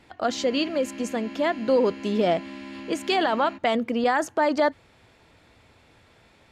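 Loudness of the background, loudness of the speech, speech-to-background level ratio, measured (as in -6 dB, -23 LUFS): -39.5 LUFS, -24.5 LUFS, 15.0 dB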